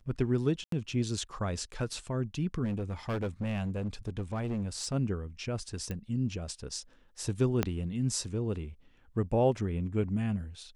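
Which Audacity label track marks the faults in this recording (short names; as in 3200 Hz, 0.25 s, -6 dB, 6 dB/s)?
0.640000	0.720000	gap 83 ms
2.640000	4.940000	clipped -29 dBFS
5.910000	5.910000	pop -23 dBFS
7.630000	7.630000	pop -13 dBFS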